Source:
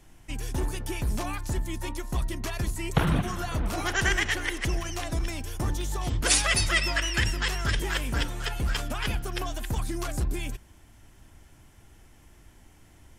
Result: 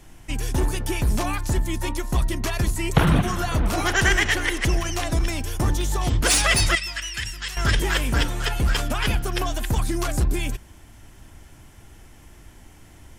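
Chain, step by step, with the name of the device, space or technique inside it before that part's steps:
0:06.75–0:07.57: guitar amp tone stack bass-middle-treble 5-5-5
saturation between pre-emphasis and de-emphasis (high-shelf EQ 2,400 Hz +11.5 dB; soft clipping −11.5 dBFS, distortion −14 dB; high-shelf EQ 2,400 Hz −11.5 dB)
level +7 dB

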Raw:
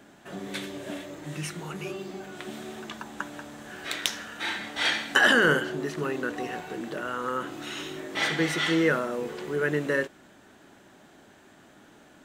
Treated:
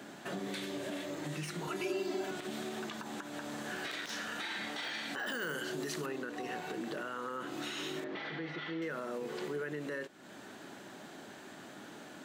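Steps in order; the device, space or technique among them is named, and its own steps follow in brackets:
broadcast voice chain (high-pass filter 120 Hz; de-essing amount 80%; downward compressor 3 to 1, threshold −42 dBFS, peak gain reduction 17.5 dB; parametric band 4,400 Hz +3.5 dB 0.39 octaves; brickwall limiter −34.5 dBFS, peak gain reduction 10 dB)
high-pass filter 78 Hz
0:01.67–0:02.31: comb filter 3 ms, depth 100%
0:05.26–0:06.06: high-shelf EQ 4,100 Hz +12 dB
0:08.04–0:08.82: high-frequency loss of the air 270 metres
level +4.5 dB

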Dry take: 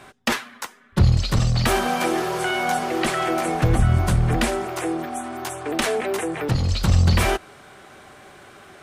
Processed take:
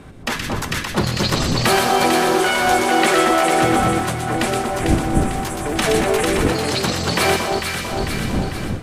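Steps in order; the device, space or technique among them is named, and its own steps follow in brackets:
high-pass filter 240 Hz 12 dB per octave
delay with a high-pass on its return 122 ms, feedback 35%, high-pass 1,800 Hz, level −4 dB
delay that swaps between a low-pass and a high-pass 224 ms, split 1,200 Hz, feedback 70%, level −2.5 dB
smartphone video outdoors (wind on the microphone −30 dBFS; automatic gain control gain up to 11 dB; level −2 dB; AAC 96 kbit/s 32,000 Hz)

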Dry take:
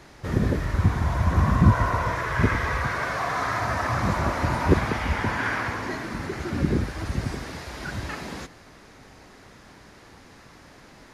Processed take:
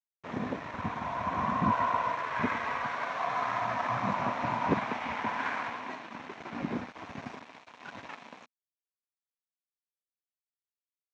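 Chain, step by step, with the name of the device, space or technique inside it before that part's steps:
blown loudspeaker (dead-zone distortion −34.5 dBFS; loudspeaker in its box 230–5,700 Hz, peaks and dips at 240 Hz +5 dB, 360 Hz −6 dB, 710 Hz +6 dB, 1,000 Hz +8 dB, 2,400 Hz +5 dB, 4,800 Hz −8 dB)
0:03.26–0:04.80: thirty-one-band graphic EQ 125 Hz +11 dB, 200 Hz +5 dB, 10,000 Hz −4 dB
level −6.5 dB

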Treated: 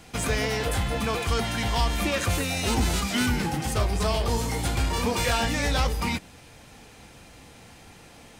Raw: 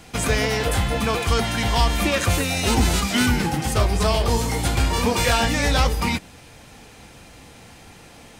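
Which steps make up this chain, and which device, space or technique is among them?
parallel distortion (in parallel at −8.5 dB: hard clipping −23.5 dBFS, distortion −6 dB)
on the sum: level −6.5 dB

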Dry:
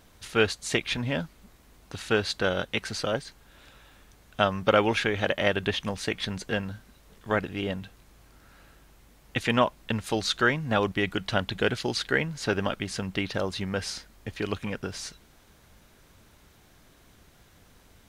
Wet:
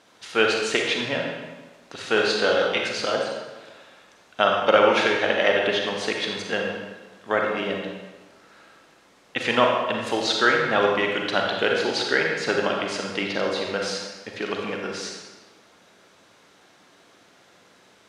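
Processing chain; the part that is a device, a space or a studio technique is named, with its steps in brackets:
supermarket ceiling speaker (band-pass filter 300–6,800 Hz; convolution reverb RT60 1.3 s, pre-delay 34 ms, DRR 0 dB)
0:02.14–0:02.88: double-tracking delay 24 ms −5.5 dB
level +3 dB

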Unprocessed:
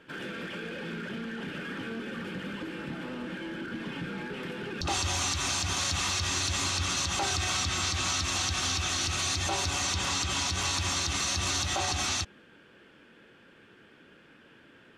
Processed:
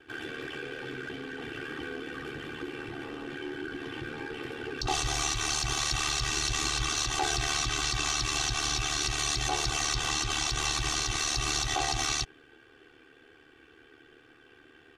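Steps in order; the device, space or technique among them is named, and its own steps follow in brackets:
ring-modulated robot voice (ring modulation 37 Hz; comb filter 2.6 ms, depth 89%)

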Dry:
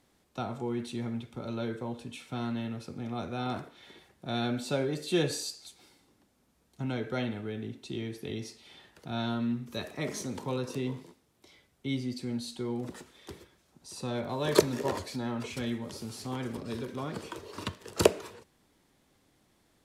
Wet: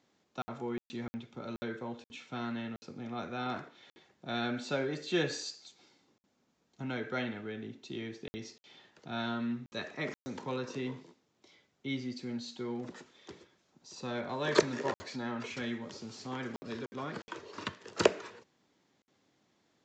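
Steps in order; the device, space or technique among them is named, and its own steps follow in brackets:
dynamic equaliser 1,700 Hz, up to +7 dB, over −53 dBFS, Q 1.3
call with lost packets (high-pass filter 140 Hz 12 dB per octave; downsampling to 16,000 Hz; dropped packets of 60 ms random)
level −3.5 dB

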